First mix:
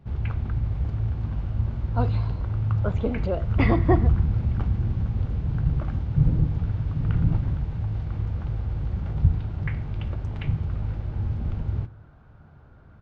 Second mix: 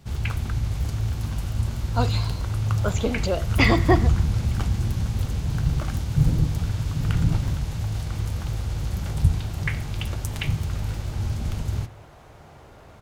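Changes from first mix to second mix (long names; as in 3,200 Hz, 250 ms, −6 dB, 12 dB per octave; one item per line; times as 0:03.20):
second sound: remove transistor ladder low-pass 1,600 Hz, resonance 75%
master: remove head-to-tape spacing loss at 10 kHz 43 dB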